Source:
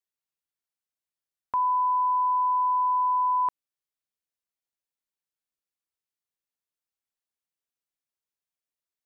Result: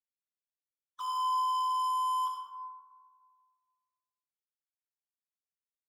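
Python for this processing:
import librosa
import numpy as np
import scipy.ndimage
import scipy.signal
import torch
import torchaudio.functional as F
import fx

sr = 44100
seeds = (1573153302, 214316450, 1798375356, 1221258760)

y = fx.sine_speech(x, sr)
y = fx.spec_box(y, sr, start_s=2.72, length_s=0.74, low_hz=430.0, high_hz=1000.0, gain_db=-22)
y = scipy.signal.sosfilt(scipy.signal.cheby1(5, 1.0, [480.0, 1100.0], 'bandstop', fs=sr, output='sos'), y)
y = fx.low_shelf(y, sr, hz=410.0, db=6.0)
y = fx.leveller(y, sr, passes=5)
y = fx.stretch_vocoder(y, sr, factor=0.65)
y = y + 10.0 ** (-10.5 / 20.0) * np.pad(y, (int(88 * sr / 1000.0), 0))[:len(y)]
y = fx.rev_plate(y, sr, seeds[0], rt60_s=1.7, hf_ratio=0.35, predelay_ms=0, drr_db=-2.5)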